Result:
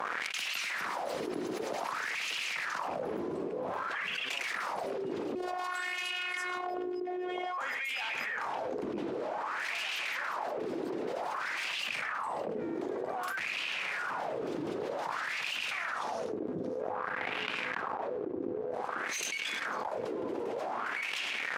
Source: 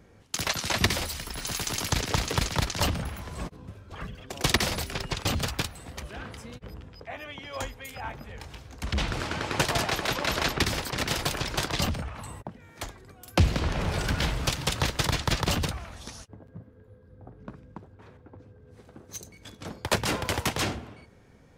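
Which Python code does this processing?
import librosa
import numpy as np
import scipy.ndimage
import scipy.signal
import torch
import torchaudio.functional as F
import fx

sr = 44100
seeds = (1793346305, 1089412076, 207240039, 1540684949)

y = fx.rattle_buzz(x, sr, strikes_db=-24.0, level_db=-20.0)
y = scipy.signal.sosfilt(scipy.signal.butter(2, 200.0, 'highpass', fs=sr, output='sos'), y)
y = fx.high_shelf(y, sr, hz=8200.0, db=8.0)
y = y + 10.0 ** (-22.0 / 20.0) * np.pad(y, (int(572 * sr / 1000.0), 0))[:len(y)]
y = np.clip(y, -10.0 ** (-19.5 / 20.0), 10.0 ** (-19.5 / 20.0))
y = fx.leveller(y, sr, passes=5)
y = y + 10.0 ** (-15.5 / 20.0) * np.pad(y, (int(105 * sr / 1000.0), 0))[:len(y)]
y = fx.robotise(y, sr, hz=361.0, at=(5.35, 7.58))
y = fx.wah_lfo(y, sr, hz=0.53, low_hz=340.0, high_hz=2800.0, q=4.0)
y = fx.dynamic_eq(y, sr, hz=3400.0, q=1.3, threshold_db=-47.0, ratio=4.0, max_db=-5)
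y = fx.env_flatten(y, sr, amount_pct=100)
y = F.gain(torch.from_numpy(y), -6.5).numpy()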